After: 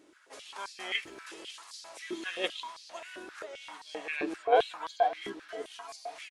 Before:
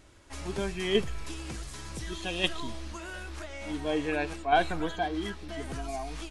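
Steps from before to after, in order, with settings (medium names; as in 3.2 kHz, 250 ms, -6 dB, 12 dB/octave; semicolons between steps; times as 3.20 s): harmony voices -7 st -8 dB; delay 531 ms -19.5 dB; step-sequenced high-pass 7.6 Hz 320–4600 Hz; trim -6.5 dB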